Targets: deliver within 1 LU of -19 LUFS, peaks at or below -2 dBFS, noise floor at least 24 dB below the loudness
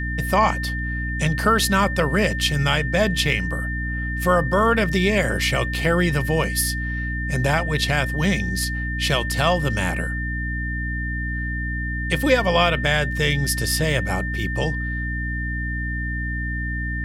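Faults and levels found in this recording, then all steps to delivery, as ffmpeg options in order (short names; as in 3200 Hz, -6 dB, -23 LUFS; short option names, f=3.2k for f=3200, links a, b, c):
hum 60 Hz; harmonics up to 300 Hz; hum level -25 dBFS; steady tone 1800 Hz; tone level -28 dBFS; loudness -21.5 LUFS; peak -5.0 dBFS; loudness target -19.0 LUFS
-> -af "bandreject=f=60:t=h:w=4,bandreject=f=120:t=h:w=4,bandreject=f=180:t=h:w=4,bandreject=f=240:t=h:w=4,bandreject=f=300:t=h:w=4"
-af "bandreject=f=1.8k:w=30"
-af "volume=2.5dB"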